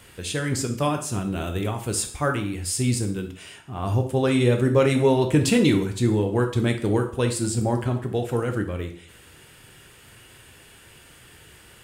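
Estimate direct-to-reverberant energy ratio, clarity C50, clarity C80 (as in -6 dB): 4.0 dB, 9.5 dB, 13.5 dB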